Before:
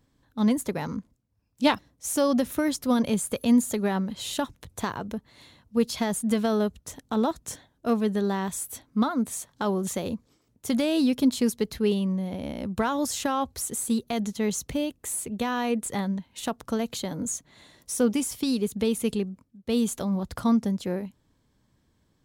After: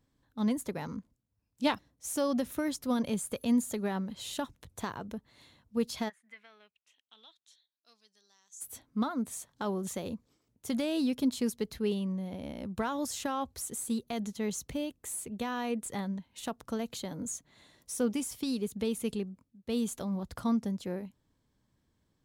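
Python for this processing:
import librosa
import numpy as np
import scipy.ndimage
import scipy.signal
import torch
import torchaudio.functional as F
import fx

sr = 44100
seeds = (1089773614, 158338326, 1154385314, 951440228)

y = fx.bandpass_q(x, sr, hz=fx.line((6.08, 1800.0), (8.6, 6700.0)), q=6.9, at=(6.08, 8.6), fade=0.02)
y = y * 10.0 ** (-7.0 / 20.0)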